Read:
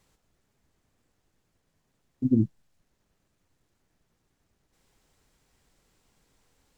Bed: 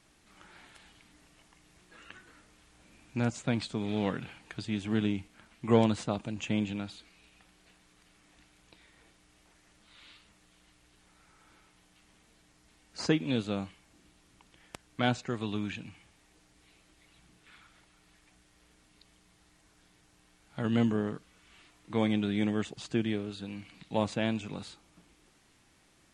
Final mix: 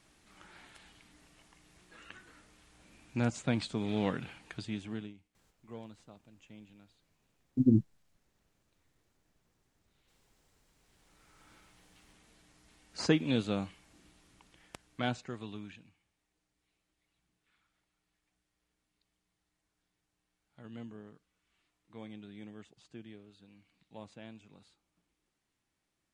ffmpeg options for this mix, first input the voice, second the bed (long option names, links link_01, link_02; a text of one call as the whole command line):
ffmpeg -i stem1.wav -i stem2.wav -filter_complex "[0:a]adelay=5350,volume=-2dB[link_01];[1:a]volume=22dB,afade=type=out:start_time=4.46:duration=0.68:silence=0.0794328,afade=type=in:start_time=10.64:duration=0.89:silence=0.0707946,afade=type=out:start_time=14.08:duration=1.89:silence=0.112202[link_02];[link_01][link_02]amix=inputs=2:normalize=0" out.wav